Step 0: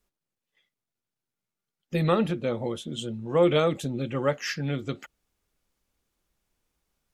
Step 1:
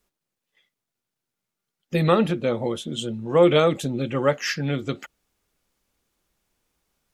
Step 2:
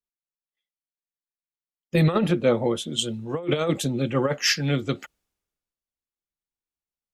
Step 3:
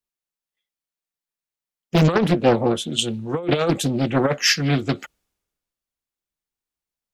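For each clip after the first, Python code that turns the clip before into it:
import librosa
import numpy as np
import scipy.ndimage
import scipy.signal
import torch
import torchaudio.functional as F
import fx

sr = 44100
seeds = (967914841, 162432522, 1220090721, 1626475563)

y1 = fx.low_shelf(x, sr, hz=100.0, db=-5.5)
y1 = y1 * librosa.db_to_amplitude(5.0)
y2 = fx.over_compress(y1, sr, threshold_db=-20.0, ratio=-0.5)
y2 = fx.band_widen(y2, sr, depth_pct=70)
y3 = fx.doppler_dist(y2, sr, depth_ms=0.84)
y3 = y3 * librosa.db_to_amplitude(4.0)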